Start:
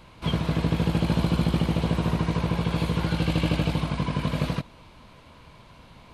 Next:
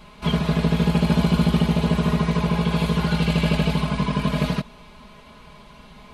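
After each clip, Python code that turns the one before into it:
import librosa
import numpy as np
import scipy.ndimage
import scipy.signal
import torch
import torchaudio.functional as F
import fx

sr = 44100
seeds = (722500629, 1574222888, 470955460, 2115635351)

y = x + 0.99 * np.pad(x, (int(4.8 * sr / 1000.0), 0))[:len(x)]
y = y * librosa.db_to_amplitude(1.5)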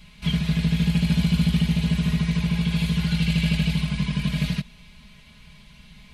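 y = fx.band_shelf(x, sr, hz=600.0, db=-14.5, octaves=2.7)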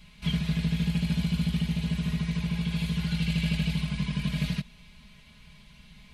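y = fx.rider(x, sr, range_db=10, speed_s=2.0)
y = y * librosa.db_to_amplitude(-6.0)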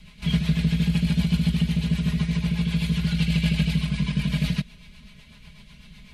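y = fx.rotary(x, sr, hz=8.0)
y = y * librosa.db_to_amplitude(6.5)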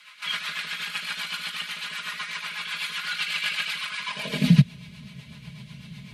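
y = fx.filter_sweep_highpass(x, sr, from_hz=1300.0, to_hz=120.0, start_s=4.05, end_s=4.62, q=3.2)
y = y * librosa.db_to_amplitude(3.0)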